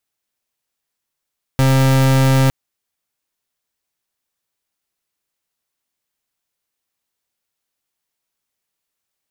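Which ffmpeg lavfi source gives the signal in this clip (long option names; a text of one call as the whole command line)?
ffmpeg -f lavfi -i "aevalsrc='0.237*(2*lt(mod(133*t,1),0.37)-1)':duration=0.91:sample_rate=44100" out.wav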